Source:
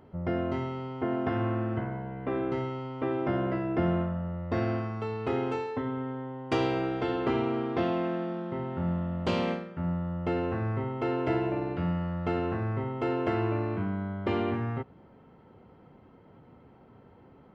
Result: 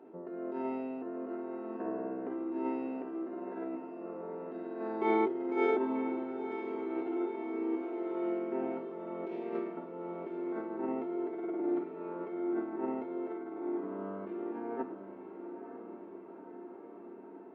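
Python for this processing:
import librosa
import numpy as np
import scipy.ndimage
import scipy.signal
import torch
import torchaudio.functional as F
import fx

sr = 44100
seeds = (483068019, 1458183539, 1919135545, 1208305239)

p1 = fx.over_compress(x, sr, threshold_db=-33.0, ratio=-0.5)
p2 = fx.ladder_highpass(p1, sr, hz=330.0, resonance_pct=50)
p3 = fx.high_shelf(p2, sr, hz=4100.0, db=-11.5)
p4 = fx.room_shoebox(p3, sr, seeds[0], volume_m3=3000.0, walls='furnished', distance_m=1.6)
p5 = fx.formant_shift(p4, sr, semitones=-3)
p6 = p5 + fx.echo_diffused(p5, sr, ms=909, feedback_pct=69, wet_db=-10.0, dry=0)
y = p6 * 10.0 ** (4.0 / 20.0)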